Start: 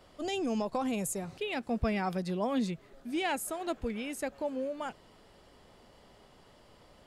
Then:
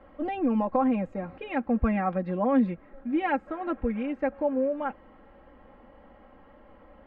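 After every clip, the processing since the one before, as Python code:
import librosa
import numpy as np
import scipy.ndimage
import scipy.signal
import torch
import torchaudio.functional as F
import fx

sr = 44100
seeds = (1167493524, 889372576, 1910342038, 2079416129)

y = scipy.signal.sosfilt(scipy.signal.butter(4, 2000.0, 'lowpass', fs=sr, output='sos'), x)
y = y + 0.87 * np.pad(y, (int(3.7 * sr / 1000.0), 0))[:len(y)]
y = F.gain(torch.from_numpy(y), 3.5).numpy()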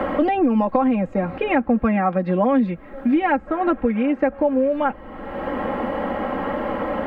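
y = fx.band_squash(x, sr, depth_pct=100)
y = F.gain(torch.from_numpy(y), 7.5).numpy()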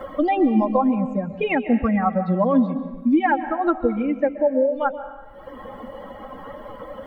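y = fx.bin_expand(x, sr, power=2.0)
y = fx.rev_plate(y, sr, seeds[0], rt60_s=1.2, hf_ratio=0.95, predelay_ms=115, drr_db=11.0)
y = F.gain(torch.from_numpy(y), 3.0).numpy()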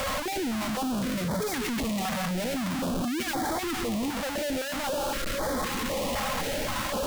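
y = np.sign(x) * np.sqrt(np.mean(np.square(x)))
y = fx.filter_held_notch(y, sr, hz=3.9, low_hz=350.0, high_hz=2700.0)
y = F.gain(torch.from_numpy(y), -6.0).numpy()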